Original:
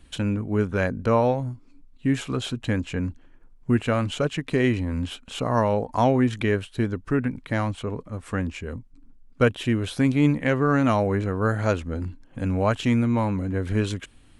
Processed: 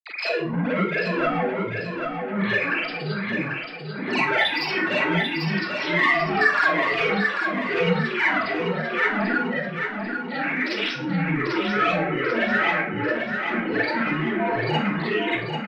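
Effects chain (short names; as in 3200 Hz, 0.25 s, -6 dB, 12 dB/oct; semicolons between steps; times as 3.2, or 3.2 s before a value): sine-wave speech; HPF 200 Hz 12 dB/oct; in parallel at +1.5 dB: limiter -17 dBFS, peak gain reduction 10 dB; on the sum: compressor 10:1, threshold -20 dBFS, peak gain reduction 11 dB; grains 0.1 s, pitch spread up and down by 12 st; soft clip -22 dBFS, distortion -15 dB; bell 2300 Hz +13 dB 1.4 oct; dispersion lows, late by 59 ms, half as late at 580 Hz; on a send: feedback echo 0.727 s, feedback 45%, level -5.5 dB; on the sum: Schroeder reverb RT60 0.33 s, combs from 32 ms, DRR -8 dB; speed mistake 48 kHz file played as 44.1 kHz; backwards sustainer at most 80 dB/s; gain -8 dB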